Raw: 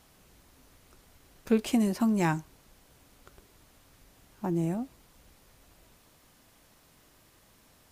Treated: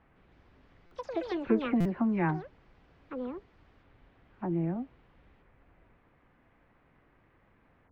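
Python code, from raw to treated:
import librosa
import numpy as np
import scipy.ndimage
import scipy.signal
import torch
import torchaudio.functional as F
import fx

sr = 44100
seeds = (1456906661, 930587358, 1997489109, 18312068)

y = fx.spec_delay(x, sr, highs='early', ms=115)
y = scipy.signal.sosfilt(scipy.signal.cheby1(3, 1.0, 2100.0, 'lowpass', fs=sr, output='sos'), y)
y = fx.echo_pitch(y, sr, ms=159, semitones=7, count=2, db_per_echo=-6.0)
y = fx.buffer_glitch(y, sr, at_s=(0.86, 1.8), block=256, repeats=8)
y = F.gain(torch.from_numpy(y), -1.5).numpy()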